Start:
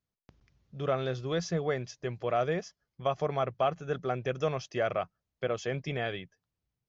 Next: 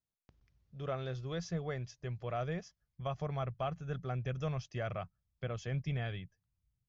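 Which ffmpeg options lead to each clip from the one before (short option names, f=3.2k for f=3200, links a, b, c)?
-af "asubboost=boost=7:cutoff=140,volume=-8dB"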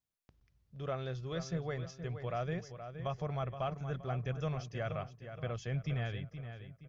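-filter_complex "[0:a]asplit=2[a][b];[b]adelay=471,lowpass=f=3.9k:p=1,volume=-9.5dB,asplit=2[c][d];[d]adelay=471,lowpass=f=3.9k:p=1,volume=0.4,asplit=2[e][f];[f]adelay=471,lowpass=f=3.9k:p=1,volume=0.4,asplit=2[g][h];[h]adelay=471,lowpass=f=3.9k:p=1,volume=0.4[i];[a][c][e][g][i]amix=inputs=5:normalize=0"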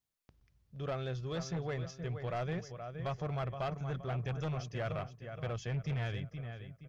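-af "aeval=exprs='0.0596*sin(PI/2*1.78*val(0)/0.0596)':c=same,aeval=exprs='0.0631*(cos(1*acos(clip(val(0)/0.0631,-1,1)))-cos(1*PI/2))+0.000891*(cos(7*acos(clip(val(0)/0.0631,-1,1)))-cos(7*PI/2))':c=same,volume=-6.5dB"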